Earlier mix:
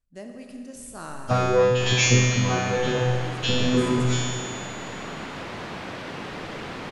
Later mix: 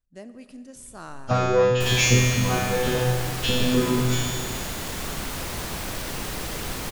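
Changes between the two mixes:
speech: send −10.0 dB
second sound: remove band-pass filter 140–2,900 Hz

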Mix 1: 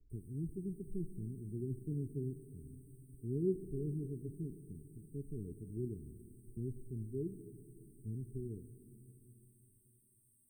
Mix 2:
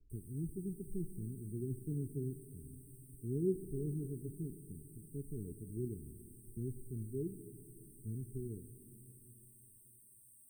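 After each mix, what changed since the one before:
master: add high-shelf EQ 4,800 Hz +12 dB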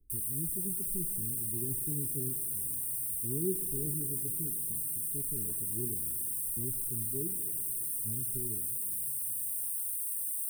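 master: remove high-frequency loss of the air 180 metres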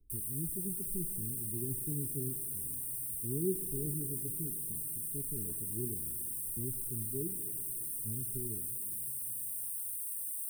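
background −4.0 dB

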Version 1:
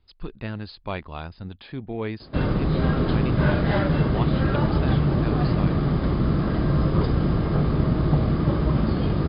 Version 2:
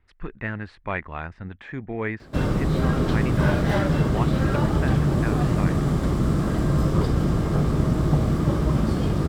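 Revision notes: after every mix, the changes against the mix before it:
speech: add low-pass with resonance 1,900 Hz, resonance Q 3.6
master: remove linear-phase brick-wall low-pass 5,100 Hz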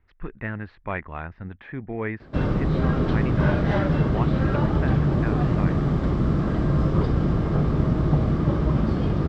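speech: add high-frequency loss of the air 68 metres
master: add high-frequency loss of the air 180 metres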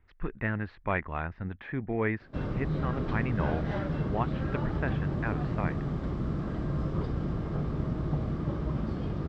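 background −10.0 dB

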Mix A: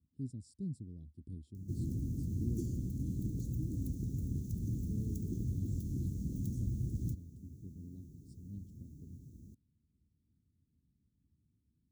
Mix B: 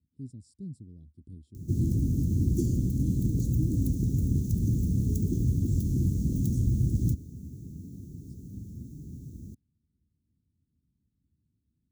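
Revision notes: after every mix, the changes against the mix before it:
background +11.0 dB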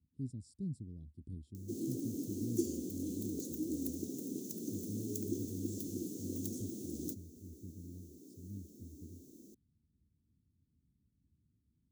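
background: add high-pass filter 310 Hz 24 dB per octave

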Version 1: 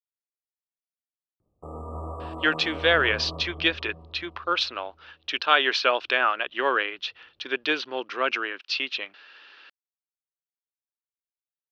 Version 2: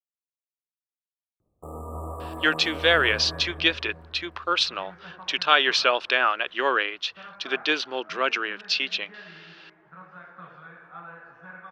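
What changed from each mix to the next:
second sound: unmuted
master: remove high-frequency loss of the air 110 metres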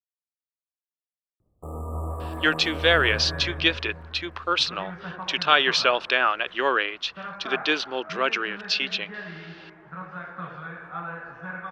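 second sound +7.5 dB
master: add low-shelf EQ 160 Hz +7.5 dB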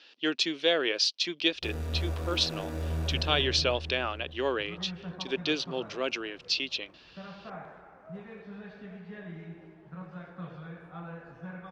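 speech: entry −2.20 s
first sound: remove linear-phase brick-wall band-stop 1,300–7,100 Hz
master: add parametric band 1,400 Hz −14.5 dB 1.8 octaves

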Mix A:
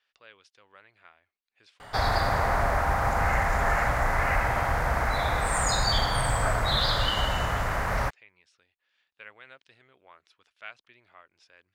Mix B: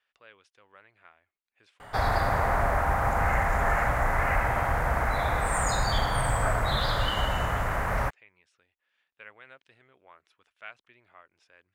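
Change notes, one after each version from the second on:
master: add parametric band 4,700 Hz −8 dB 1.1 octaves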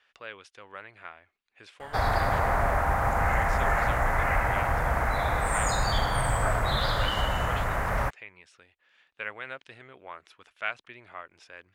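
speech +12.0 dB

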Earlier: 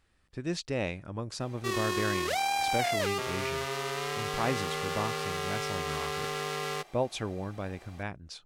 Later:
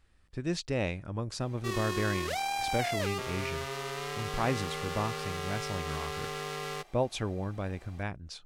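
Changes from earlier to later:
background −3.5 dB
master: add low-shelf EQ 79 Hz +9 dB

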